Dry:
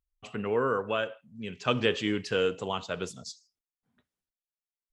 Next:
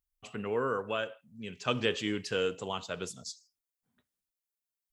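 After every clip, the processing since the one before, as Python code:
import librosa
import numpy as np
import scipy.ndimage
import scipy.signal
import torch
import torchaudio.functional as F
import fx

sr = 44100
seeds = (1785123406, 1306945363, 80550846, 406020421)

y = fx.high_shelf(x, sr, hz=6700.0, db=10.5)
y = y * librosa.db_to_amplitude(-4.0)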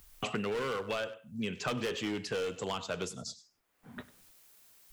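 y = np.clip(x, -10.0 ** (-29.5 / 20.0), 10.0 ** (-29.5 / 20.0))
y = y + 10.0 ** (-19.5 / 20.0) * np.pad(y, (int(98 * sr / 1000.0), 0))[:len(y)]
y = fx.band_squash(y, sr, depth_pct=100)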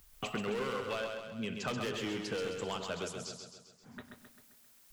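y = fx.echo_feedback(x, sr, ms=132, feedback_pct=53, wet_db=-5.5)
y = y * librosa.db_to_amplitude(-3.0)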